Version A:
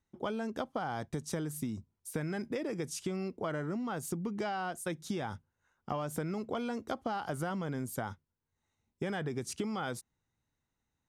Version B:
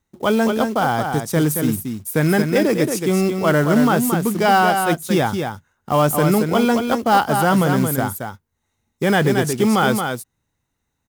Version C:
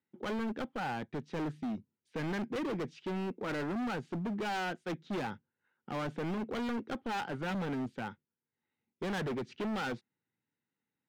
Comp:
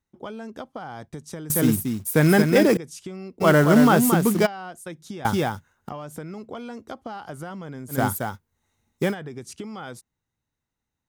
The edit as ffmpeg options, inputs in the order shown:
-filter_complex "[1:a]asplit=4[a][b][c][d];[0:a]asplit=5[e][f][g][h][i];[e]atrim=end=1.502[j];[a]atrim=start=1.498:end=2.772[k];[f]atrim=start=2.768:end=3.42[l];[b]atrim=start=3.4:end=4.47[m];[g]atrim=start=4.45:end=5.252[n];[c]atrim=start=5.248:end=5.892[o];[h]atrim=start=5.888:end=8.04[p];[d]atrim=start=7.88:end=9.15[q];[i]atrim=start=8.99[r];[j][k]acrossfade=d=0.004:c1=hsin:c2=hsin[s];[s][l]acrossfade=d=0.004:c1=hsin:c2=hsin[t];[t][m]acrossfade=d=0.02:c1=tri:c2=tri[u];[u][n]acrossfade=d=0.02:c1=tri:c2=tri[v];[v][o]acrossfade=d=0.004:c1=hsin:c2=hsin[w];[w][p]acrossfade=d=0.004:c1=hsin:c2=hsin[x];[x][q]acrossfade=d=0.16:c1=tri:c2=tri[y];[y][r]acrossfade=d=0.16:c1=tri:c2=tri"

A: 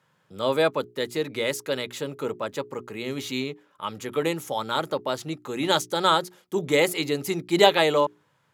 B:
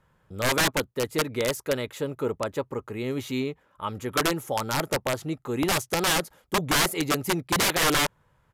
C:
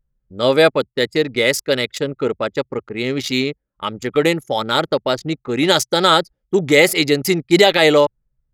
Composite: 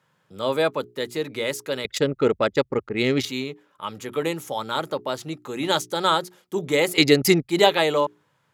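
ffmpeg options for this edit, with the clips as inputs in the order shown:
-filter_complex "[2:a]asplit=2[a][b];[0:a]asplit=3[c][d][e];[c]atrim=end=1.852[f];[a]atrim=start=1.848:end=3.252[g];[d]atrim=start=3.248:end=6.982[h];[b]atrim=start=6.978:end=7.492[i];[e]atrim=start=7.488[j];[f][g]acrossfade=d=0.004:c1=hsin:c2=hsin[k];[k][h]acrossfade=d=0.004:c1=hsin:c2=hsin[l];[l][i]acrossfade=d=0.004:c1=hsin:c2=hsin[m];[m][j]acrossfade=d=0.004:c1=hsin:c2=hsin"

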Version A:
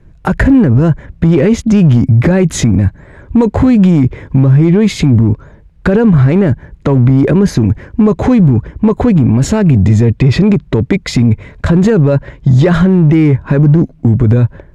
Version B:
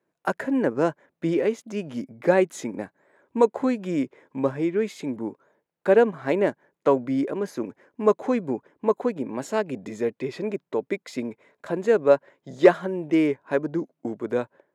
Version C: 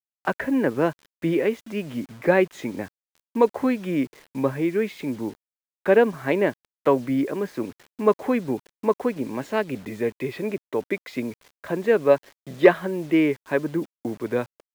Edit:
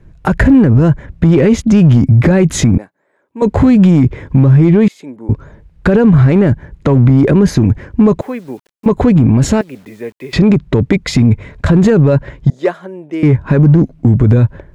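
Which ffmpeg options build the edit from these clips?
-filter_complex "[1:a]asplit=3[a][b][c];[2:a]asplit=2[d][e];[0:a]asplit=6[f][g][h][i][j][k];[f]atrim=end=2.782[l];[a]atrim=start=2.778:end=3.422[m];[g]atrim=start=3.418:end=4.882[n];[b]atrim=start=4.878:end=5.292[o];[h]atrim=start=5.288:end=8.212[p];[d]atrim=start=8.208:end=8.862[q];[i]atrim=start=8.858:end=9.612[r];[e]atrim=start=9.608:end=10.332[s];[j]atrim=start=10.328:end=12.502[t];[c]atrim=start=12.498:end=13.232[u];[k]atrim=start=13.228[v];[l][m]acrossfade=d=0.004:c1=hsin:c2=hsin[w];[w][n]acrossfade=d=0.004:c1=hsin:c2=hsin[x];[x][o]acrossfade=d=0.004:c1=hsin:c2=hsin[y];[y][p]acrossfade=d=0.004:c1=hsin:c2=hsin[z];[z][q]acrossfade=d=0.004:c1=hsin:c2=hsin[aa];[aa][r]acrossfade=d=0.004:c1=hsin:c2=hsin[ab];[ab][s]acrossfade=d=0.004:c1=hsin:c2=hsin[ac];[ac][t]acrossfade=d=0.004:c1=hsin:c2=hsin[ad];[ad][u]acrossfade=d=0.004:c1=hsin:c2=hsin[ae];[ae][v]acrossfade=d=0.004:c1=hsin:c2=hsin"

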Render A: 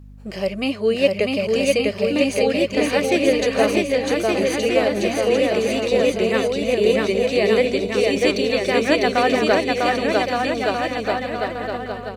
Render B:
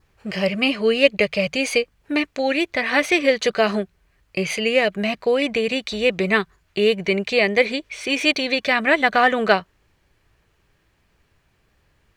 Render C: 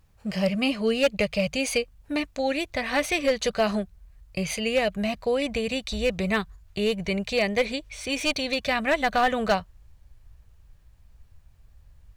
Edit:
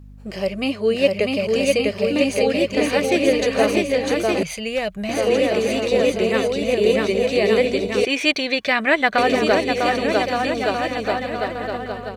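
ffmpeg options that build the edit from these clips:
-filter_complex "[0:a]asplit=3[a][b][c];[a]atrim=end=4.432[d];[2:a]atrim=start=4.428:end=5.092[e];[b]atrim=start=5.088:end=8.052[f];[1:a]atrim=start=8.048:end=9.182[g];[c]atrim=start=9.178[h];[d][e]acrossfade=d=0.004:c1=hsin:c2=hsin[i];[i][f]acrossfade=d=0.004:c1=hsin:c2=hsin[j];[j][g]acrossfade=d=0.004:c1=hsin:c2=hsin[k];[k][h]acrossfade=d=0.004:c1=hsin:c2=hsin"

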